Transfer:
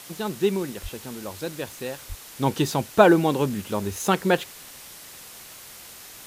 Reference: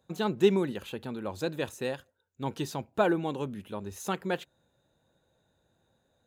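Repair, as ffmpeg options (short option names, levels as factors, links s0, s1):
-filter_complex "[0:a]asplit=3[s0][s1][s2];[s0]afade=t=out:st=0.82:d=0.02[s3];[s1]highpass=f=140:w=0.5412,highpass=f=140:w=1.3066,afade=t=in:st=0.82:d=0.02,afade=t=out:st=0.94:d=0.02[s4];[s2]afade=t=in:st=0.94:d=0.02[s5];[s3][s4][s5]amix=inputs=3:normalize=0,asplit=3[s6][s7][s8];[s6]afade=t=out:st=2.08:d=0.02[s9];[s7]highpass=f=140:w=0.5412,highpass=f=140:w=1.3066,afade=t=in:st=2.08:d=0.02,afade=t=out:st=2.2:d=0.02[s10];[s8]afade=t=in:st=2.2:d=0.02[s11];[s9][s10][s11]amix=inputs=3:normalize=0,afwtdn=0.0079,asetnsamples=n=441:p=0,asendcmd='2.02 volume volume -10.5dB',volume=1"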